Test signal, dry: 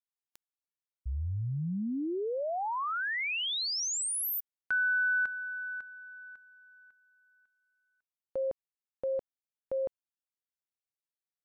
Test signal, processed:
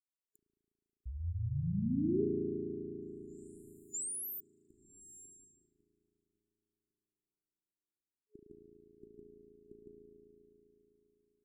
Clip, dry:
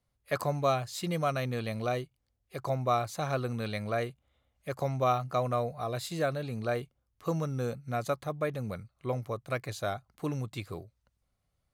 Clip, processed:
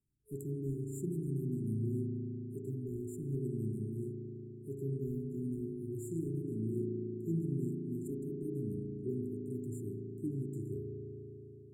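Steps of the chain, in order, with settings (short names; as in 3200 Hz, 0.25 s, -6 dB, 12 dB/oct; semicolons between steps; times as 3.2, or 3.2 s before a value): spring tank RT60 3.8 s, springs 36 ms, chirp 70 ms, DRR -2 dB; overdrive pedal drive 10 dB, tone 2300 Hz, clips at -11.5 dBFS; FFT band-reject 420–7000 Hz; gain -1.5 dB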